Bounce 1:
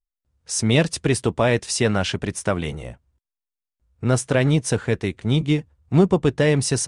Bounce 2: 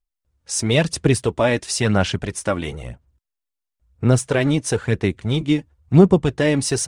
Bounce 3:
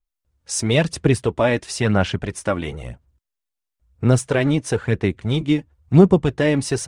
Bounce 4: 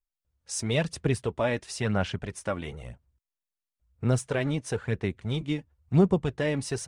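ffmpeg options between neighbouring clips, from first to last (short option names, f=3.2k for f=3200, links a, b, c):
-af "aphaser=in_gain=1:out_gain=1:delay=3.6:decay=0.43:speed=0.99:type=sinusoidal"
-af "adynamicequalizer=threshold=0.01:dfrequency=3600:dqfactor=0.7:tfrequency=3600:tqfactor=0.7:attack=5:release=100:ratio=0.375:range=4:mode=cutabove:tftype=highshelf"
-af "equalizer=f=310:w=3.6:g=-4,volume=-8.5dB"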